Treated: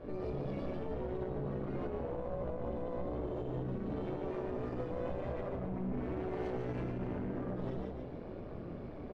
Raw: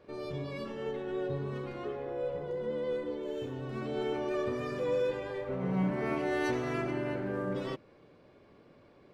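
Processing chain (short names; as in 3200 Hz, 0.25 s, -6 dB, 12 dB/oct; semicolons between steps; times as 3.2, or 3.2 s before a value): chorus voices 6, 0.27 Hz, delay 20 ms, depth 4.1 ms; one-sided clip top -45 dBFS, bottom -27.5 dBFS; flange 1.9 Hz, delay 2.8 ms, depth 3.8 ms, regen +83%; compressor 5:1, threshold -56 dBFS, peak gain reduction 17 dB; tilt -4 dB/oct; AM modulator 180 Hz, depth 50%; frequency-shifting echo 0.145 s, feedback 46%, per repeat +62 Hz, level -4 dB; limiter -44.5 dBFS, peak gain reduction 8.5 dB; low shelf 420 Hz -3.5 dB; gain +17.5 dB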